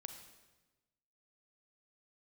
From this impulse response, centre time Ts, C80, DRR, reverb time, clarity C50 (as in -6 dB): 23 ms, 9.0 dB, 6.0 dB, 1.2 s, 7.0 dB